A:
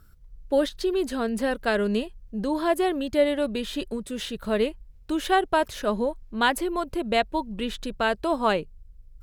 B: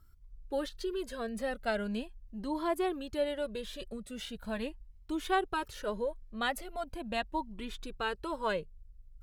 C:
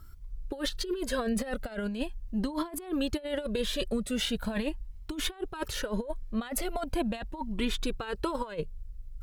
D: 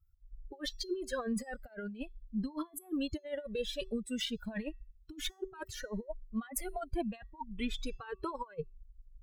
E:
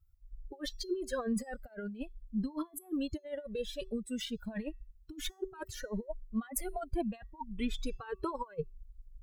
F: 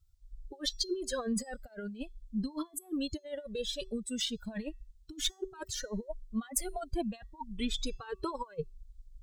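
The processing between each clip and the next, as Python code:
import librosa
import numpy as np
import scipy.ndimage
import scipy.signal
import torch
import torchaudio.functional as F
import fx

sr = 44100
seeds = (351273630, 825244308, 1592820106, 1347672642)

y1 = fx.comb_cascade(x, sr, direction='rising', hz=0.4)
y1 = F.gain(torch.from_numpy(y1), -5.0).numpy()
y2 = fx.over_compress(y1, sr, threshold_db=-38.0, ratio=-0.5)
y2 = F.gain(torch.from_numpy(y2), 7.5).numpy()
y3 = fx.bin_expand(y2, sr, power=2.0)
y3 = fx.comb_fb(y3, sr, f0_hz=380.0, decay_s=0.38, harmonics='odd', damping=0.0, mix_pct=50)
y3 = F.gain(torch.from_numpy(y3), 4.0).numpy()
y4 = fx.peak_eq(y3, sr, hz=2700.0, db=-4.5, octaves=2.4)
y4 = fx.rider(y4, sr, range_db=10, speed_s=2.0)
y4 = F.gain(torch.from_numpy(y4), 1.0).numpy()
y5 = fx.band_shelf(y4, sr, hz=5300.0, db=9.0, octaves=1.7)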